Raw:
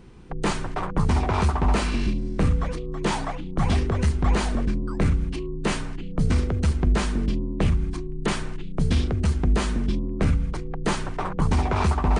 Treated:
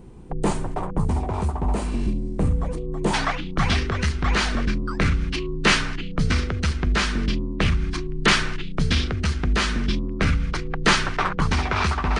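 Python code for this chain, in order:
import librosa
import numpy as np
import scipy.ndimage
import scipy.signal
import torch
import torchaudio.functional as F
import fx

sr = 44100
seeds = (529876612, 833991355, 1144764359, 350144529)

y = fx.rider(x, sr, range_db=4, speed_s=0.5)
y = fx.band_shelf(y, sr, hz=2700.0, db=fx.steps((0.0, -8.5), (3.13, 10.0)), octaves=2.6)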